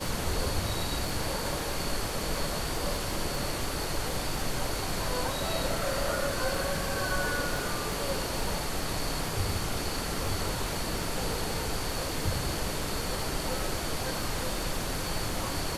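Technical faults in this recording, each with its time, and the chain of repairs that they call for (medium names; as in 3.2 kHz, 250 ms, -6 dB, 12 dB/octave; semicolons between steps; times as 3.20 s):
crackle 31 per s -34 dBFS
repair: de-click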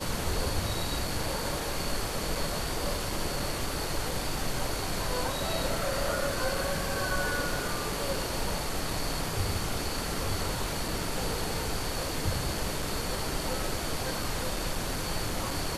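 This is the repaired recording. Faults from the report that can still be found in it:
nothing left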